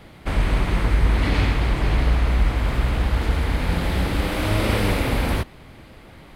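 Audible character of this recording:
background noise floor −45 dBFS
spectral slope −5.5 dB per octave

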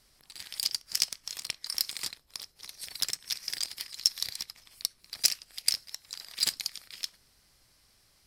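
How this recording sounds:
background noise floor −66 dBFS
spectral slope +1.5 dB per octave

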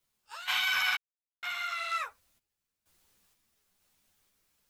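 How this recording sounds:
a quantiser's noise floor 12 bits, dither triangular
sample-and-hold tremolo 2.1 Hz, depth 100%
a shimmering, thickened sound

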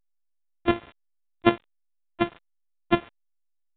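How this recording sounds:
a buzz of ramps at a fixed pitch in blocks of 128 samples
tremolo saw up 1.9 Hz, depth 65%
a quantiser's noise floor 8 bits, dither none
A-law companding

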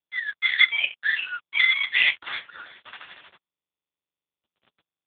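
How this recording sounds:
a buzz of ramps at a fixed pitch in blocks of 8 samples
sample-and-hold tremolo
a quantiser's noise floor 8 bits, dither none
AMR narrowband

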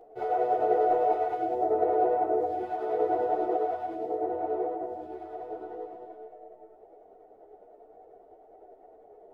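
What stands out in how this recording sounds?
tremolo triangle 10 Hz, depth 40%
a shimmering, thickened sound

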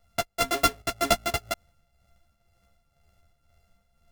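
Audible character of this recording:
a buzz of ramps at a fixed pitch in blocks of 64 samples
tremolo triangle 2 Hz, depth 60%
a shimmering, thickened sound

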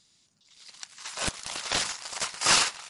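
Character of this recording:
background noise floor −66 dBFS
spectral slope 0.0 dB per octave

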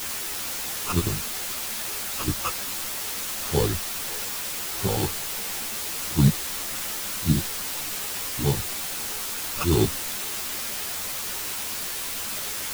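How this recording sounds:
aliases and images of a low sample rate 3,900 Hz
sample-and-hold tremolo 3.5 Hz, depth 55%
a quantiser's noise floor 6 bits, dither triangular
a shimmering, thickened sound

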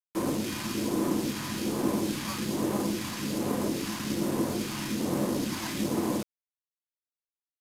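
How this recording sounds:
aliases and images of a low sample rate 5,700 Hz, jitter 0%
phaser sweep stages 2, 1.2 Hz, lowest notch 450–3,400 Hz
a quantiser's noise floor 6 bits, dither none
AC-3

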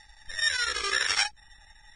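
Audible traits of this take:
a buzz of ramps at a fixed pitch in blocks of 8 samples
chopped level 12 Hz, depth 65%, duty 80%
Ogg Vorbis

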